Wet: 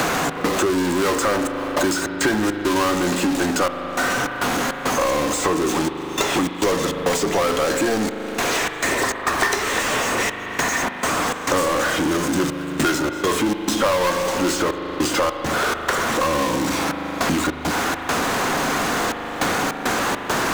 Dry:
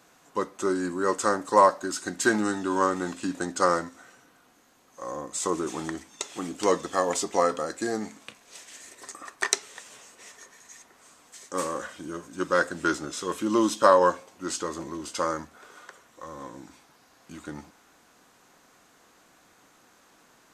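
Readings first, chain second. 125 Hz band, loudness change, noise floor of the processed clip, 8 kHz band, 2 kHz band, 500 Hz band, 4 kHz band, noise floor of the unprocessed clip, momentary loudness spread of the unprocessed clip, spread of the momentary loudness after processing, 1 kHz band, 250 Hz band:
+13.0 dB, +6.0 dB, -30 dBFS, +9.0 dB, +12.0 dB, +6.0 dB, +14.0 dB, -60 dBFS, 22 LU, 3 LU, +6.0 dB, +9.5 dB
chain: high shelf 7100 Hz -8 dB; power-law curve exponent 0.35; step gate "xx.xxxxxxx..xx." 102 bpm -24 dB; spring tank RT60 2 s, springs 39 ms, chirp 50 ms, DRR 8.5 dB; three-band squash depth 100%; gain -5 dB

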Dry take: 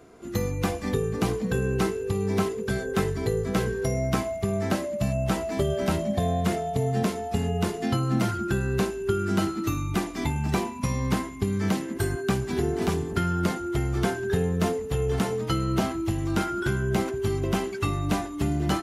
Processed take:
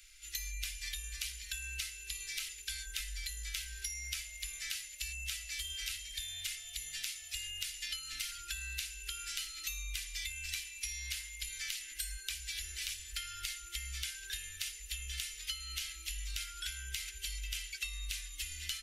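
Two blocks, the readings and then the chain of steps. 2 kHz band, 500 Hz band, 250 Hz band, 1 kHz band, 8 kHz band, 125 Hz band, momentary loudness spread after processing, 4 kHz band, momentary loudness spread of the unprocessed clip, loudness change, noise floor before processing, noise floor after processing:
-7.5 dB, under -40 dB, under -40 dB, -28.0 dB, +1.0 dB, -25.0 dB, 3 LU, +0.5 dB, 3 LU, -12.5 dB, -35 dBFS, -50 dBFS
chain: inverse Chebyshev band-stop 100–1000 Hz, stop band 50 dB; compressor 5:1, threshold -45 dBFS, peak gain reduction 11.5 dB; gain +7.5 dB

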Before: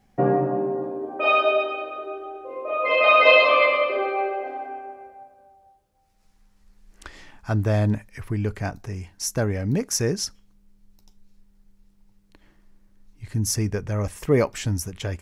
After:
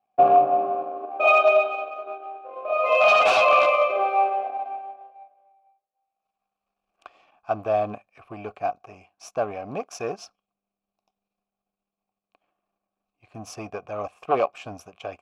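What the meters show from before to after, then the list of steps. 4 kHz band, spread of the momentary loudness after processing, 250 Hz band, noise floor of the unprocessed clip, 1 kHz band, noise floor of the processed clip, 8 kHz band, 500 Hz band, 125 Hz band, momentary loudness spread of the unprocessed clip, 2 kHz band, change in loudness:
-5.5 dB, 21 LU, -11.0 dB, -61 dBFS, +4.0 dB, under -85 dBFS, -15.0 dB, 0.0 dB, -19.5 dB, 18 LU, -2.5 dB, +0.5 dB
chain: power-law curve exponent 1.4; sine folder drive 15 dB, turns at -2 dBFS; vowel filter a

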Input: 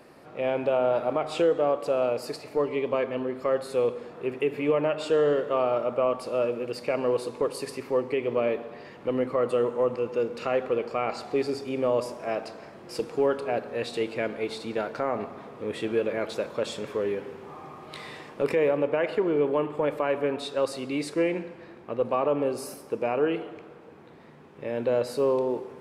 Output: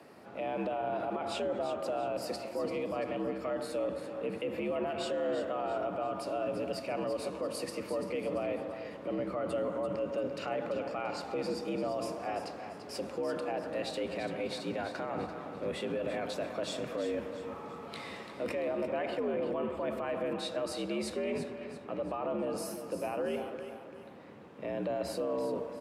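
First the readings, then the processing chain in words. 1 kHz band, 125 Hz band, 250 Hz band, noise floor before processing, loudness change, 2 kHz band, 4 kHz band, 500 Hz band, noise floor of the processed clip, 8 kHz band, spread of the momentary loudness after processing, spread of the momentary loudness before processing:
-5.5 dB, -6.0 dB, -6.0 dB, -48 dBFS, -8.0 dB, -6.5 dB, -3.5 dB, -8.5 dB, -47 dBFS, -2.5 dB, 7 LU, 10 LU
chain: octaver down 1 oct, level -2 dB; limiter -23.5 dBFS, peak gain reduction 10.5 dB; frequency shift +68 Hz; on a send: feedback echo 0.34 s, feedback 40%, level -10 dB; on the sum: gain -3 dB

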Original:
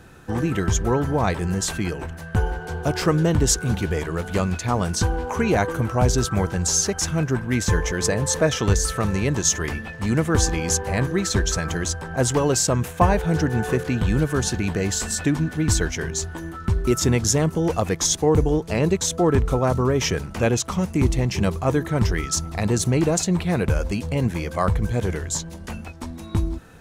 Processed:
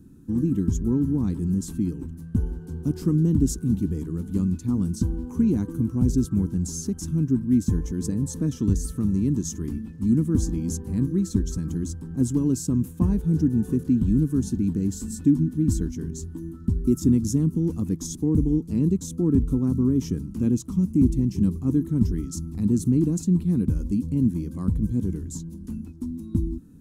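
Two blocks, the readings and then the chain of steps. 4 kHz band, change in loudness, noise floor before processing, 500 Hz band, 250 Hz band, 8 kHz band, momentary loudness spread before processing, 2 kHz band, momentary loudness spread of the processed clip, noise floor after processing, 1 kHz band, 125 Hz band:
under -15 dB, -2.5 dB, -37 dBFS, -11.5 dB, +2.5 dB, -13.0 dB, 7 LU, under -25 dB, 9 LU, -40 dBFS, under -20 dB, -2.0 dB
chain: EQ curve 120 Hz 0 dB, 270 Hz +10 dB, 650 Hz -27 dB, 1000 Hz -17 dB, 2000 Hz -25 dB, 11000 Hz -4 dB; gain -3.5 dB

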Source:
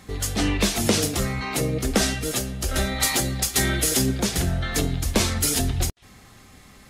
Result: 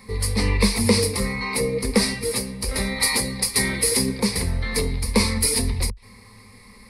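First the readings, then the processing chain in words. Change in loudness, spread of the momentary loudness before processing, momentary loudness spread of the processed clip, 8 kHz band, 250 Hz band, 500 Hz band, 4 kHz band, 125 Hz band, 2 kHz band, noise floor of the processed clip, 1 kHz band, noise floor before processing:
+1.5 dB, 6 LU, 6 LU, +0.5 dB, +1.5 dB, +2.5 dB, +1.5 dB, -0.5 dB, +2.0 dB, -48 dBFS, -0.5 dB, -50 dBFS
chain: ripple EQ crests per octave 0.91, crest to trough 16 dB; gain -2 dB

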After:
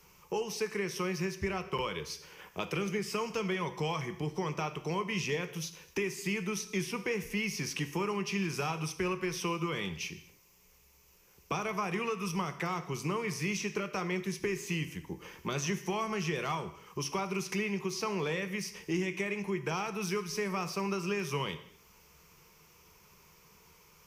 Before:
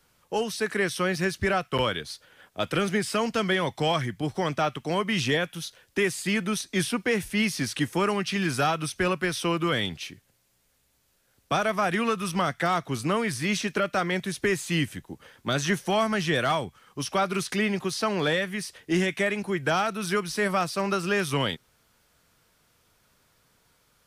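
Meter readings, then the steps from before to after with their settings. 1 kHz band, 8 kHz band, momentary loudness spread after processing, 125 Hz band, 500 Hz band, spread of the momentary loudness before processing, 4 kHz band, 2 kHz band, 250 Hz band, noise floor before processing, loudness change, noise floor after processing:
-8.5 dB, -5.0 dB, 5 LU, -6.0 dB, -7.5 dB, 6 LU, -9.5 dB, -9.0 dB, -7.5 dB, -68 dBFS, -8.0 dB, -62 dBFS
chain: ripple EQ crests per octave 0.78, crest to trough 11 dB; compressor 2.5:1, threshold -41 dBFS, peak gain reduction 16.5 dB; non-linear reverb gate 0.28 s falling, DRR 9.5 dB; gain +3 dB

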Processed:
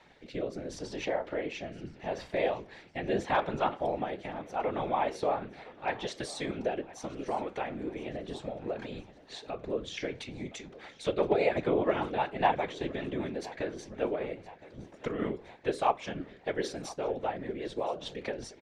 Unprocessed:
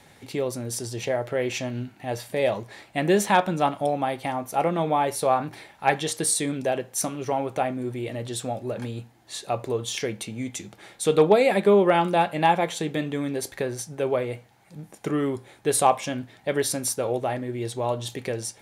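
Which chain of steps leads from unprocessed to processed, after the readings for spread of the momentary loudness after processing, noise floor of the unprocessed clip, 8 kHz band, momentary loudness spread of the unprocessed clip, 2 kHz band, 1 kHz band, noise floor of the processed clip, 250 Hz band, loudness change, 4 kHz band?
13 LU, -54 dBFS, -20.5 dB, 13 LU, -7.5 dB, -8.0 dB, -55 dBFS, -8.5 dB, -8.5 dB, -9.0 dB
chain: low shelf 250 Hz -9.5 dB; notches 60/120/180/240/300/360/420 Hz; in parallel at +1.5 dB: compressor, threshold -33 dBFS, peak gain reduction 18 dB; on the sum: rotary speaker horn 0.75 Hz, later 5 Hz, at 9.98; whisperiser; air absorption 170 m; on a send: feedback echo 1.017 s, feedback 54%, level -20 dB; on the sum: gain -5.5 dB

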